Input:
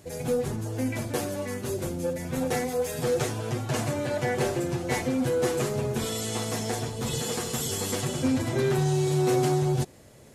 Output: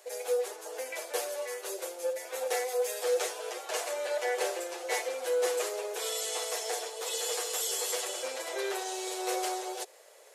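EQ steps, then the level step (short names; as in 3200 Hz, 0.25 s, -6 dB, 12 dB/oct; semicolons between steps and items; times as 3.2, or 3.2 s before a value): steep high-pass 440 Hz 48 dB/oct; dynamic EQ 1100 Hz, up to -4 dB, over -42 dBFS, Q 0.78; 0.0 dB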